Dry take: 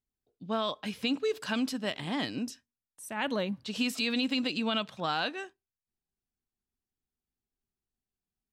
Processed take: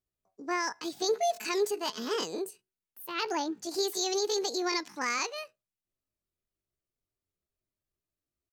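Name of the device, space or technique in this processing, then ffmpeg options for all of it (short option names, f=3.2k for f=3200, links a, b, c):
chipmunk voice: -filter_complex "[0:a]asettb=1/sr,asplit=3[a][b][c];[a]atrim=end=1.104[d];[b]atrim=start=1.1:end=2.17,asetpts=PTS-STARTPTS,afade=t=in:d=0.004:c=qsin,afade=t=out:st=1.066:d=0.004:c=qsin,aecho=1:1:7.4:0.47,atrim=end_sample=47187[e];[c]atrim=start=2.166[f];[d][e]acrossfade=d=0.004:c1=hsin:c2=qsin[g];[g][f]acrossfade=d=0.004:c1=qsin:c2=hsin,asetrate=70004,aresample=44100,atempo=0.629961"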